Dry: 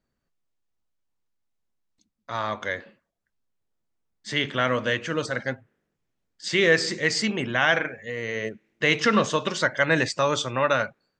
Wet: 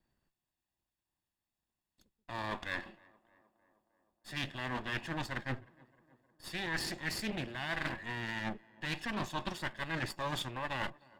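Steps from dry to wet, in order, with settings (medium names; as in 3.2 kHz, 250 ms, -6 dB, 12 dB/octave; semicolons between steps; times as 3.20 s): comb filter that takes the minimum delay 1.1 ms; band-stop 6 kHz, Q 5.5; reverse; compression 12:1, threshold -34 dBFS, peak gain reduction 19 dB; reverse; small resonant body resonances 350/3300 Hz, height 8 dB; on a send: tape echo 310 ms, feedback 75%, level -23 dB, low-pass 1.6 kHz; on the sum: loudspeaker Doppler distortion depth 0.31 ms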